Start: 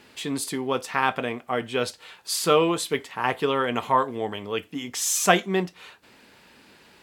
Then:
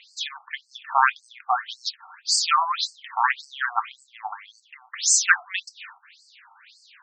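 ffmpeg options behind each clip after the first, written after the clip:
-af "afftfilt=real='re*between(b*sr/1024,960*pow(6200/960,0.5+0.5*sin(2*PI*1.8*pts/sr))/1.41,960*pow(6200/960,0.5+0.5*sin(2*PI*1.8*pts/sr))*1.41)':imag='im*between(b*sr/1024,960*pow(6200/960,0.5+0.5*sin(2*PI*1.8*pts/sr))/1.41,960*pow(6200/960,0.5+0.5*sin(2*PI*1.8*pts/sr))*1.41)':win_size=1024:overlap=0.75,volume=2.51"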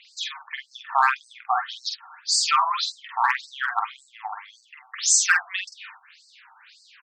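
-filter_complex "[0:a]asplit=2[s0][s1];[s1]adelay=47,volume=0.596[s2];[s0][s2]amix=inputs=2:normalize=0,acrossover=split=1500|1900|4200[s3][s4][s5][s6];[s4]asoftclip=type=hard:threshold=0.0631[s7];[s3][s7][s5][s6]amix=inputs=4:normalize=0,volume=0.891"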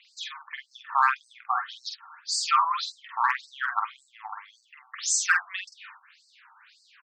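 -af "highpass=f=1100:t=q:w=2,volume=0.447"

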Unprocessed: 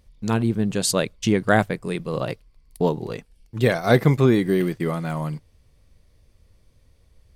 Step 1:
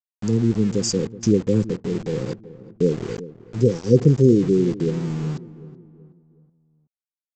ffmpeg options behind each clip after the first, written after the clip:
-filter_complex "[0:a]afftfilt=real='re*(1-between(b*sr/4096,530,4600))':imag='im*(1-between(b*sr/4096,530,4600))':win_size=4096:overlap=0.75,aresample=16000,aeval=exprs='val(0)*gte(abs(val(0)),0.0188)':c=same,aresample=44100,asplit=2[s0][s1];[s1]adelay=375,lowpass=f=1100:p=1,volume=0.158,asplit=2[s2][s3];[s3]adelay=375,lowpass=f=1100:p=1,volume=0.45,asplit=2[s4][s5];[s5]adelay=375,lowpass=f=1100:p=1,volume=0.45,asplit=2[s6][s7];[s7]adelay=375,lowpass=f=1100:p=1,volume=0.45[s8];[s0][s2][s4][s6][s8]amix=inputs=5:normalize=0,volume=1.33"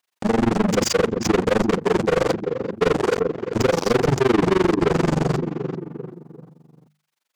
-filter_complex "[0:a]asplit=2[s0][s1];[s1]highpass=f=720:p=1,volume=112,asoftclip=type=tanh:threshold=0.841[s2];[s0][s2]amix=inputs=2:normalize=0,lowpass=f=3300:p=1,volume=0.501,tremolo=f=23:d=1,bandreject=f=50:t=h:w=6,bandreject=f=100:t=h:w=6,bandreject=f=150:t=h:w=6,bandreject=f=200:t=h:w=6,volume=0.531"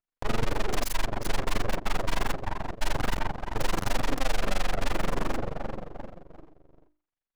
-af "adynamicsmooth=sensitivity=7:basefreq=1000,aeval=exprs='abs(val(0))':c=same,volume=0.631"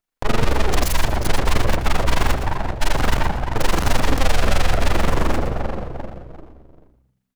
-filter_complex "[0:a]asplit=5[s0][s1][s2][s3][s4];[s1]adelay=116,afreqshift=-64,volume=0.335[s5];[s2]adelay=232,afreqshift=-128,volume=0.111[s6];[s3]adelay=348,afreqshift=-192,volume=0.0363[s7];[s4]adelay=464,afreqshift=-256,volume=0.012[s8];[s0][s5][s6][s7][s8]amix=inputs=5:normalize=0,volume=2.66"

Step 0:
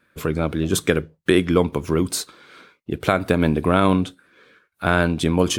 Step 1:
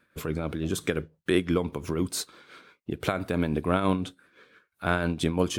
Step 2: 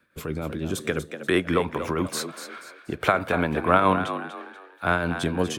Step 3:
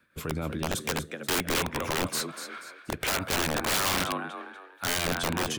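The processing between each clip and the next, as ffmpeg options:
-filter_complex "[0:a]asplit=2[s0][s1];[s1]acompressor=threshold=0.0562:ratio=6,volume=0.891[s2];[s0][s2]amix=inputs=2:normalize=0,tremolo=f=5.9:d=0.5,volume=0.422"
-filter_complex "[0:a]acrossover=split=230|650|2200[s0][s1][s2][s3];[s2]dynaudnorm=f=350:g=7:m=3.76[s4];[s0][s1][s4][s3]amix=inputs=4:normalize=0,asplit=5[s5][s6][s7][s8][s9];[s6]adelay=241,afreqshift=64,volume=0.316[s10];[s7]adelay=482,afreqshift=128,volume=0.114[s11];[s8]adelay=723,afreqshift=192,volume=0.0412[s12];[s9]adelay=964,afreqshift=256,volume=0.0148[s13];[s5][s10][s11][s12][s13]amix=inputs=5:normalize=0"
-af "equalizer=f=450:w=0.79:g=-3.5,aeval=exprs='(mod(10.6*val(0)+1,2)-1)/10.6':c=same"

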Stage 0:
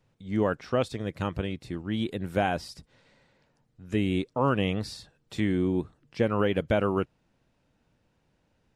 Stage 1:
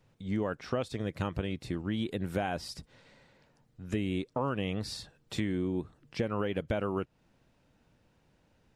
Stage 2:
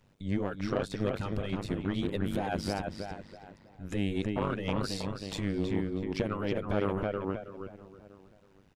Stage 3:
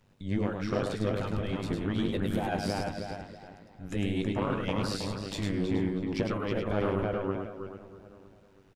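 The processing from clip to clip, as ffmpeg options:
-af "acompressor=threshold=0.0251:ratio=4,volume=1.33"
-filter_complex "[0:a]asplit=2[s0][s1];[s1]adelay=321,lowpass=f=2800:p=1,volume=0.668,asplit=2[s2][s3];[s3]adelay=321,lowpass=f=2800:p=1,volume=0.43,asplit=2[s4][s5];[s5]adelay=321,lowpass=f=2800:p=1,volume=0.43,asplit=2[s6][s7];[s7]adelay=321,lowpass=f=2800:p=1,volume=0.43,asplit=2[s8][s9];[s9]adelay=321,lowpass=f=2800:p=1,volume=0.43[s10];[s2][s4][s6][s8][s10]amix=inputs=5:normalize=0[s11];[s0][s11]amix=inputs=2:normalize=0,asoftclip=type=tanh:threshold=0.0631,tremolo=f=99:d=0.919,volume=1.88"
-filter_complex "[0:a]asplit=2[s0][s1];[s1]adelay=18,volume=0.251[s2];[s0][s2]amix=inputs=2:normalize=0,aecho=1:1:104:0.596"

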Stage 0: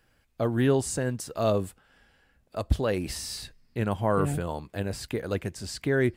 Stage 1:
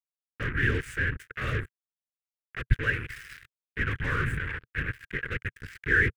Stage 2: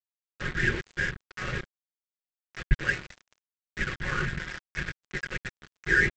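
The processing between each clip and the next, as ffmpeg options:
-af "afftfilt=real='hypot(re,im)*cos(2*PI*random(0))':imag='hypot(re,im)*sin(2*PI*random(1))':win_size=512:overlap=0.75,acrusher=bits=5:mix=0:aa=0.5,firequalizer=gain_entry='entry(120,0);entry(180,-13);entry(450,-10);entry(680,-29);entry(1600,11);entry(4300,-17)':delay=0.05:min_phase=1,volume=2.37"
-af "aecho=1:1:5.5:0.76,aresample=16000,aeval=exprs='sgn(val(0))*max(abs(val(0))-0.0178,0)':c=same,aresample=44100"

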